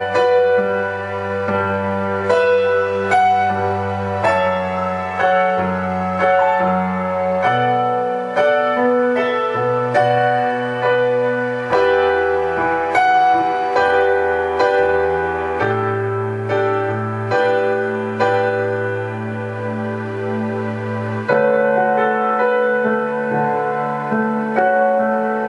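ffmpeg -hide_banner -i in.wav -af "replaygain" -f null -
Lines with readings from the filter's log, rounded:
track_gain = -1.4 dB
track_peak = 0.558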